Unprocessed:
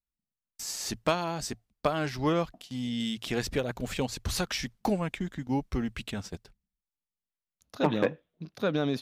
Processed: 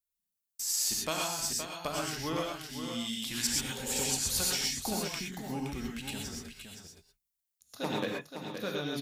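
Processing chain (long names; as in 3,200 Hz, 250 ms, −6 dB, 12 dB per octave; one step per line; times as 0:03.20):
first-order pre-emphasis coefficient 0.8
0:03.28–0:03.98: healed spectral selection 360–930 Hz both
0:03.35–0:04.20: parametric band 7,900 Hz +7.5 dB 1.2 octaves
single-tap delay 519 ms −8 dB
reverb whose tail is shaped and stops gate 150 ms rising, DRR −1 dB
level +3.5 dB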